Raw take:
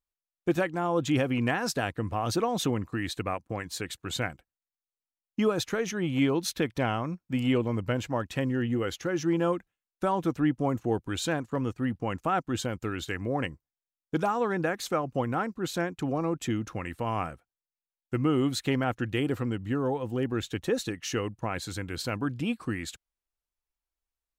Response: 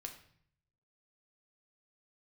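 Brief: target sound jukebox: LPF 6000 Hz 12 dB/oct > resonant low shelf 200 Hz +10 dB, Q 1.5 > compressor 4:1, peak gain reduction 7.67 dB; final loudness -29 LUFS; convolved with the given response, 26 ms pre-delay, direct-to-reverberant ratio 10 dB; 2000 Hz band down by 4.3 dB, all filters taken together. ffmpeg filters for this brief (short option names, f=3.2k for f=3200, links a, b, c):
-filter_complex "[0:a]equalizer=f=2k:t=o:g=-5.5,asplit=2[a][b];[1:a]atrim=start_sample=2205,adelay=26[c];[b][c]afir=irnorm=-1:irlink=0,volume=-6.5dB[d];[a][d]amix=inputs=2:normalize=0,lowpass=6k,lowshelf=f=200:t=q:w=1.5:g=10,acompressor=threshold=-23dB:ratio=4"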